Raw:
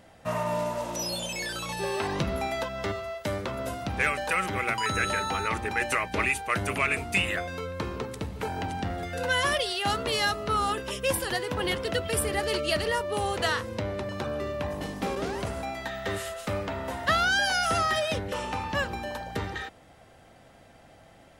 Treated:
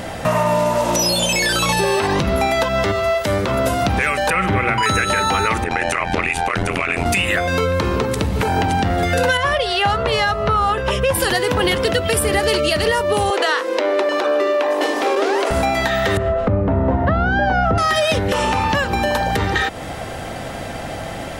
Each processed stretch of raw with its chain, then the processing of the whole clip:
0:04.30–0:04.83: bass and treble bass +5 dB, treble −13 dB + flutter between parallel walls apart 8.1 metres, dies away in 0.23 s
0:05.64–0:07.06: downward compressor, threshold −30 dBFS + amplitude modulation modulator 85 Hz, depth 80% + high-frequency loss of the air 54 metres
0:09.37–0:11.15: low-pass filter 1,200 Hz 6 dB per octave + parametric band 280 Hz −14 dB 0.93 octaves
0:13.30–0:15.51: Butterworth high-pass 300 Hz 48 dB per octave + high-shelf EQ 7,200 Hz −9.5 dB
0:16.17–0:17.78: Bessel low-pass filter 980 Hz + low-shelf EQ 480 Hz +11.5 dB
whole clip: downward compressor 6 to 1, threshold −41 dBFS; boost into a limiter +32.5 dB; level −6.5 dB

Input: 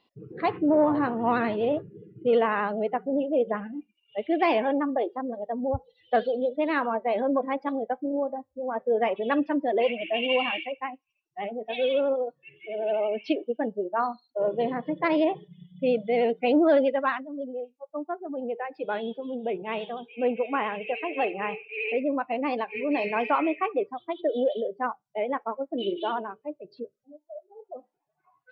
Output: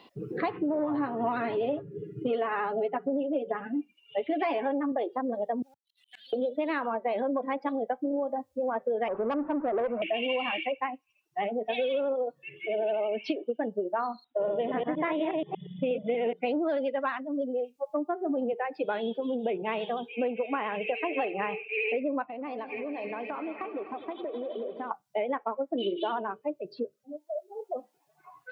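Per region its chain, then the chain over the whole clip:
0:00.78–0:04.92: high-shelf EQ 3,700 Hz −7 dB + comb filter 7.2 ms, depth 74%
0:05.62–0:06.33: inverse Chebyshev high-pass filter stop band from 1,200 Hz + volume swells 727 ms + leveller curve on the samples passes 2
0:09.08–0:10.02: converter with a step at zero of −33.5 dBFS + Butterworth low-pass 1,400 Hz + tube saturation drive 19 dB, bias 0.25
0:14.24–0:16.33: delay that plays each chunk backwards 119 ms, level −3 dB + linear-phase brick-wall low-pass 3,900 Hz
0:17.75–0:18.53: low-shelf EQ 490 Hz +9 dB + hum removal 120.7 Hz, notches 35
0:22.24–0:24.91: high-shelf EQ 2,900 Hz −9 dB + downward compressor 10 to 1, threshold −39 dBFS + echo machine with several playback heads 85 ms, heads second and third, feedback 64%, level −14 dB
whole clip: downward compressor, threshold −30 dBFS; low-shelf EQ 84 Hz −10 dB; multiband upward and downward compressor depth 40%; level +4 dB

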